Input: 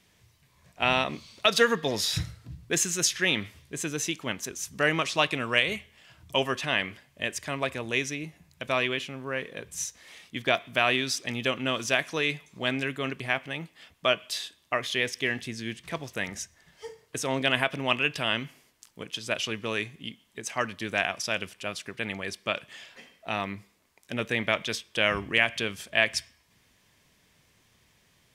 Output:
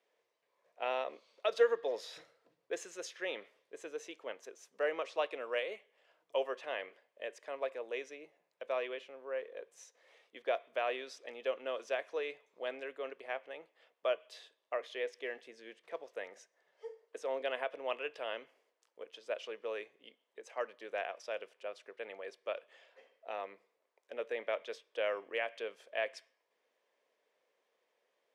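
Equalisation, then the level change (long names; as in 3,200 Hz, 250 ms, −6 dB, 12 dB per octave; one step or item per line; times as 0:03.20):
four-pole ladder high-pass 440 Hz, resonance 60%
high-shelf EQ 2,600 Hz −9.5 dB
high-shelf EQ 9,500 Hz −11.5 dB
−1.5 dB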